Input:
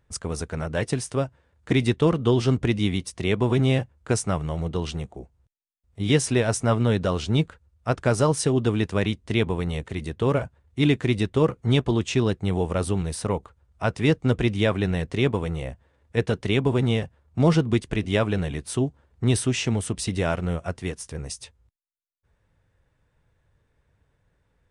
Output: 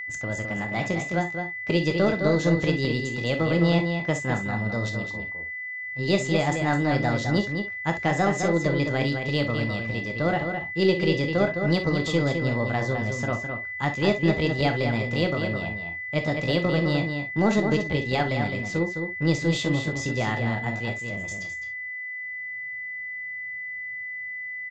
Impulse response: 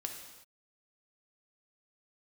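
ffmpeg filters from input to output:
-filter_complex "[0:a]asetrate=57191,aresample=44100,atempo=0.771105,aresample=16000,aresample=44100,asplit=2[a][b];[b]aeval=exprs='clip(val(0),-1,0.0531)':c=same,volume=-12dB[c];[a][c]amix=inputs=2:normalize=0,asplit=2[d][e];[e]adelay=209.9,volume=-6dB,highshelf=f=4k:g=-4.72[f];[d][f]amix=inputs=2:normalize=0[g];[1:a]atrim=start_sample=2205,atrim=end_sample=3087[h];[g][h]afir=irnorm=-1:irlink=0,aeval=exprs='val(0)+0.0355*sin(2*PI*2000*n/s)':c=same,volume=-2.5dB"

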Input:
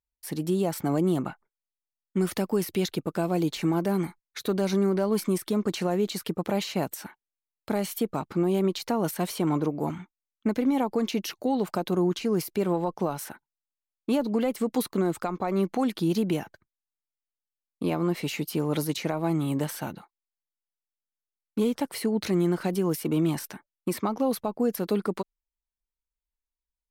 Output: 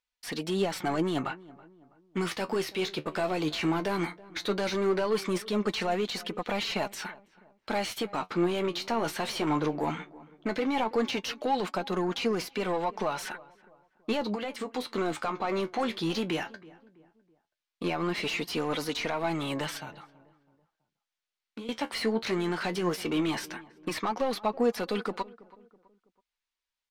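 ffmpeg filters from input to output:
-filter_complex "[0:a]equalizer=f=4.1k:w=0.36:g=13.5,asettb=1/sr,asplit=3[a][b][c];[a]atrim=end=14.334[d];[b]atrim=start=14.33:end=14.87,asetpts=PTS-STARTPTS,afade=t=in:d=0.004:c=qsin,afade=t=out:st=0.536:d=0.004:c=qsin,acompressor=threshold=-28dB:ratio=10[e];[c]atrim=start=14.866[f];[d][e]acrossfade=d=0.004:c1=hsin:c2=qsin[g];[g][f]acrossfade=d=0.004:c1=qsin:c2=hsin,alimiter=limit=-15dB:level=0:latency=1:release=66,asettb=1/sr,asplit=3[h][i][j];[h]atrim=end=19.774[k];[i]atrim=start=19.77:end=21.69,asetpts=PTS-STARTPTS,afade=t=in:d=0.004:c=qsin,afade=t=out:st=1.916:d=0.004:c=qsin,acrossover=split=130[l][m];[m]acompressor=threshold=-40dB:ratio=6[n];[l][n]amix=inputs=2:normalize=0[o];[j]atrim=start=21.686[p];[k][o]acrossfade=d=0.004:c1=hsin:c2=qsin[q];[q][p]acrossfade=d=0.004:c1=qsin:c2=hsin,asplit=2[r][s];[s]highpass=f=720:p=1,volume=14dB,asoftclip=type=tanh:threshold=-15dB[t];[r][t]amix=inputs=2:normalize=0,lowpass=f=1.5k:p=1,volume=-6dB,flanger=delay=4:depth=9.5:regen=52:speed=0.16:shape=sinusoidal,asplit=2[u][v];[v]adelay=327,lowpass=f=1.4k:p=1,volume=-20dB,asplit=2[w][x];[x]adelay=327,lowpass=f=1.4k:p=1,volume=0.43,asplit=2[y][z];[z]adelay=327,lowpass=f=1.4k:p=1,volume=0.43[aa];[u][w][y][aa]amix=inputs=4:normalize=0"

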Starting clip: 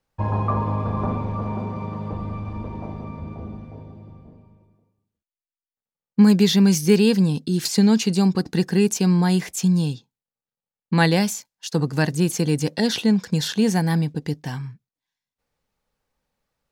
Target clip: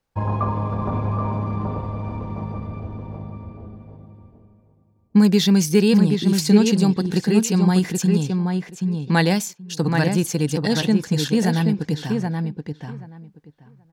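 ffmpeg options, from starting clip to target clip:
-filter_complex "[0:a]atempo=1.2,asplit=2[a][b];[b]adelay=778,lowpass=f=2.2k:p=1,volume=-4dB,asplit=2[c][d];[d]adelay=778,lowpass=f=2.2k:p=1,volume=0.16,asplit=2[e][f];[f]adelay=778,lowpass=f=2.2k:p=1,volume=0.16[g];[a][c][e][g]amix=inputs=4:normalize=0"

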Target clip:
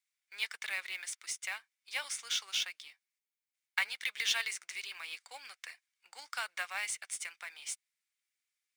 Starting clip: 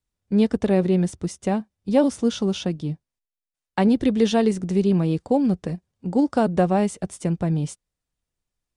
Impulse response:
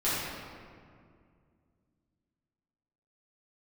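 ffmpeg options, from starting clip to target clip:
-af "highpass=f=1.5k:w=0.5412,highpass=f=1.5k:w=1.3066,equalizer=f=2.2k:w=6.4:g=10,acrusher=bits=4:mode=log:mix=0:aa=0.000001"

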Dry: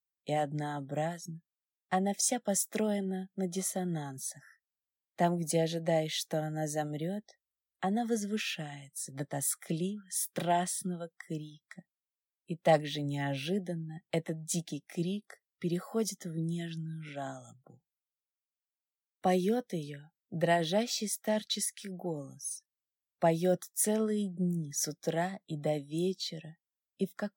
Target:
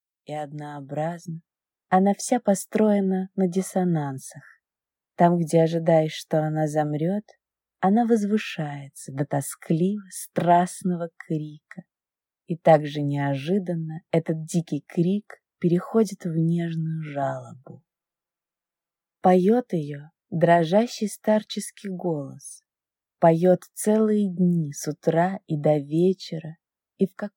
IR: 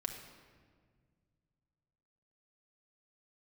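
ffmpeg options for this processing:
-filter_complex "[0:a]asettb=1/sr,asplit=3[a][b][c];[a]atrim=end=17.224[d];[b]atrim=start=17.22:end=19.26,asetpts=PTS-STARTPTS,afade=t=in:d=0.004:c=qsin,afade=t=out:st=2.036:d=0.004:c=qsin,aecho=1:1:5.9:0.69,atrim=end_sample=89964[e];[c]atrim=start=19.256[f];[d][e]acrossfade=d=0.004:c1=hsin:c2=qsin[g];[g][f]acrossfade=d=0.004:c1=qsin:c2=hsin,acrossover=split=1900[h][i];[h]dynaudnorm=f=730:g=3:m=14dB[j];[j][i]amix=inputs=2:normalize=0,volume=-2dB"

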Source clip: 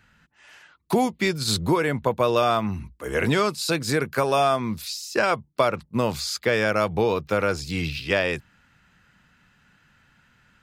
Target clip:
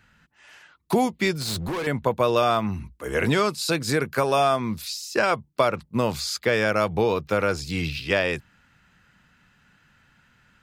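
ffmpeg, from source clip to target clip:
-filter_complex "[0:a]asettb=1/sr,asplit=3[a][b][c];[a]atrim=end=1.354[d];[b]atrim=start=1.35:end=1.87,asetpts=PTS-STARTPTS,afade=t=in:d=0.004:c=qsin,afade=t=out:st=0.516:d=0.004:c=qsin,volume=26dB,asoftclip=hard,volume=-26dB[e];[c]atrim=start=1.866[f];[d][e]acrossfade=d=0.004:c1=hsin:c2=qsin[g];[g][f]acrossfade=d=0.004:c1=qsin:c2=hsin"

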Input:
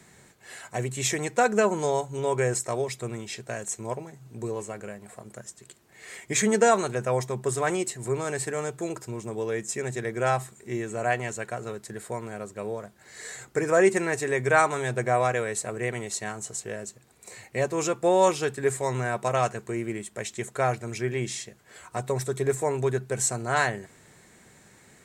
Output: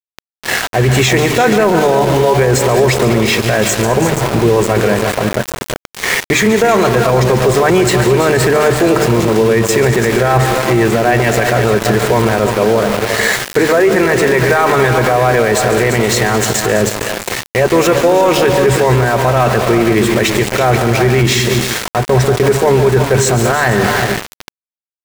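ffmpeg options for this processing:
-filter_complex "[0:a]lowpass=3.7k,bandreject=f=50:t=h:w=6,bandreject=f=100:t=h:w=6,bandreject=f=150:t=h:w=6,bandreject=f=200:t=h:w=6,bandreject=f=250:t=h:w=6,bandreject=f=300:t=h:w=6,areverse,acompressor=threshold=-35dB:ratio=4,areverse,asoftclip=type=tanh:threshold=-25.5dB,asplit=2[a][b];[b]aecho=0:1:141|206|331|356|473:0.224|0.188|0.266|0.237|0.168[c];[a][c]amix=inputs=2:normalize=0,asplit=2[d][e];[e]asetrate=22050,aresample=44100,atempo=2,volume=-17dB[f];[d][f]amix=inputs=2:normalize=0,aeval=exprs='val(0)*gte(abs(val(0)),0.00596)':c=same,alimiter=level_in=33.5dB:limit=-1dB:release=50:level=0:latency=1,volume=-2dB"

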